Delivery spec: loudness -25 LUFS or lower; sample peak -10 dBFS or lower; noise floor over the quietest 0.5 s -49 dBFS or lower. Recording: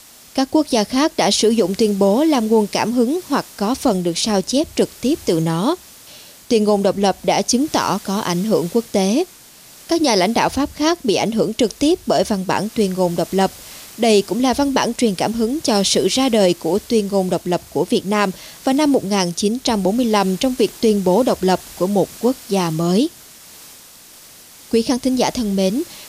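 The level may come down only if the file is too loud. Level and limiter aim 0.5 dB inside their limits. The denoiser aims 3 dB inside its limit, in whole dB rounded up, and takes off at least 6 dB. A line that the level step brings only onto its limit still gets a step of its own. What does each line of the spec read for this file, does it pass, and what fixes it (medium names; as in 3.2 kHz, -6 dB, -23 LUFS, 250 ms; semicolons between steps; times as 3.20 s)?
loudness -18.0 LUFS: fail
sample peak -5.0 dBFS: fail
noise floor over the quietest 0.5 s -43 dBFS: fail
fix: trim -7.5 dB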